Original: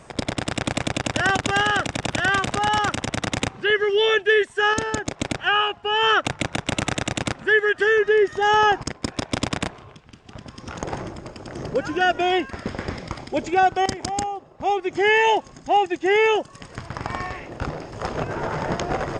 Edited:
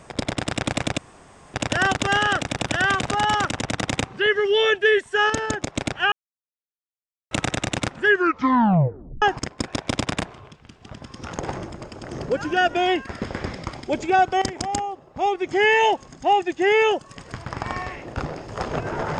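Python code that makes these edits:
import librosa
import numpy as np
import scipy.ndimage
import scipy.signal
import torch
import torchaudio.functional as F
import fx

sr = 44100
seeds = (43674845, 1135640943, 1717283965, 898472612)

y = fx.edit(x, sr, fx.insert_room_tone(at_s=0.98, length_s=0.56),
    fx.silence(start_s=5.56, length_s=1.19),
    fx.tape_stop(start_s=7.5, length_s=1.16), tone=tone)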